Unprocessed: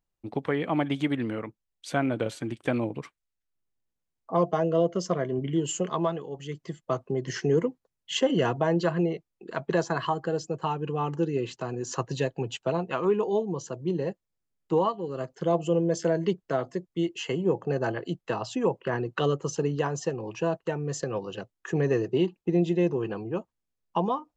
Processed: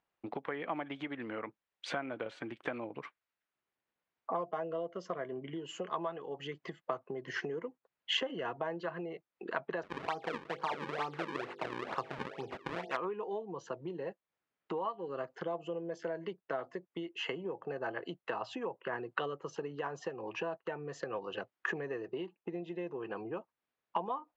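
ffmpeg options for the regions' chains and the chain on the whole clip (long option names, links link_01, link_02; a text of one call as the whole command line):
ffmpeg -i in.wav -filter_complex "[0:a]asettb=1/sr,asplit=3[link_01][link_02][link_03];[link_01]atrim=end=9.834[link_04];[link_02]atrim=start=9.83:end=12.97,asetpts=PTS-STARTPTS,afade=type=in:duration=0.004:curve=qsin,afade=type=out:start_time=3.136:duration=0.004:curve=qsin,bandreject=frequency=50.23:width_type=h:width=4,bandreject=frequency=100.46:width_type=h:width=4,bandreject=frequency=150.69:width_type=h:width=4,bandreject=frequency=200.92:width_type=h:width=4,bandreject=frequency=251.15:width_type=h:width=4,bandreject=frequency=301.38:width_type=h:width=4,bandreject=frequency=351.61:width_type=h:width=4,bandreject=frequency=401.84:width_type=h:width=4,bandreject=frequency=452.07:width_type=h:width=4,bandreject=frequency=502.3:width_type=h:width=4,bandreject=frequency=552.53:width_type=h:width=4,bandreject=frequency=602.76:width_type=h:width=4,bandreject=frequency=652.99:width_type=h:width=4,bandreject=frequency=703.22:width_type=h:width=4,bandreject=frequency=753.45:width_type=h:width=4,bandreject=frequency=803.68:width_type=h:width=4,bandreject=frequency=853.91:width_type=h:width=4,acrusher=samples=37:mix=1:aa=0.000001:lfo=1:lforange=59.2:lforate=2.2[link_05];[link_03]atrim=start=12.966[link_06];[link_04][link_05]acrossfade=duration=0.004:curve1=hsin:curve2=qsin[link_07];[link_07][link_06]acrossfade=duration=0.004:curve1=qsin:curve2=hsin,lowpass=2200,acompressor=threshold=-40dB:ratio=6,highpass=frequency=940:poles=1,volume=11dB" out.wav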